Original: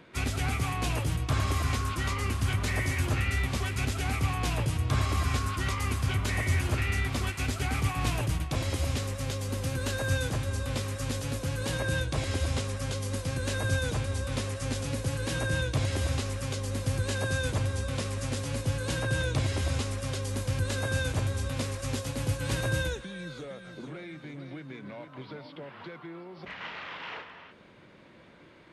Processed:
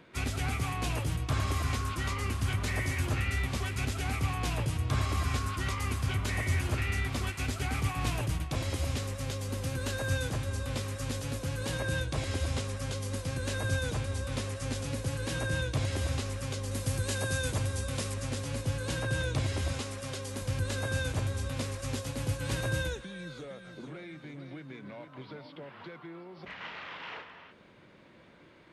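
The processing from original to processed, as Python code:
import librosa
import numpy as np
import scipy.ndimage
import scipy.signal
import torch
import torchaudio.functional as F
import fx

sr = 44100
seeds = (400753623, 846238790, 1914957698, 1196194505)

y = fx.high_shelf(x, sr, hz=7000.0, db=9.0, at=(16.71, 18.14))
y = fx.highpass(y, sr, hz=160.0, slope=6, at=(19.72, 20.42))
y = y * 10.0 ** (-2.5 / 20.0)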